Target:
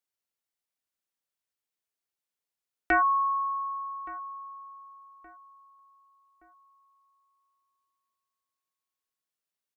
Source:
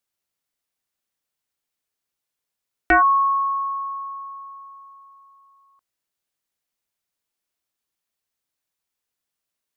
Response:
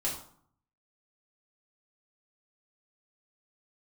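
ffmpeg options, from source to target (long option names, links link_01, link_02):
-filter_complex "[0:a]lowshelf=frequency=110:gain=-6,asplit=2[link_01][link_02];[link_02]adelay=1171,lowpass=frequency=1700:poles=1,volume=-20.5dB,asplit=2[link_03][link_04];[link_04]adelay=1171,lowpass=frequency=1700:poles=1,volume=0.46,asplit=2[link_05][link_06];[link_06]adelay=1171,lowpass=frequency=1700:poles=1,volume=0.46[link_07];[link_03][link_05][link_07]amix=inputs=3:normalize=0[link_08];[link_01][link_08]amix=inputs=2:normalize=0,volume=-7.5dB"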